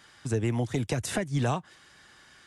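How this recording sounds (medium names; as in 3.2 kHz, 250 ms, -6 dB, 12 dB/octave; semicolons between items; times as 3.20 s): noise floor -57 dBFS; spectral tilt -5.5 dB/octave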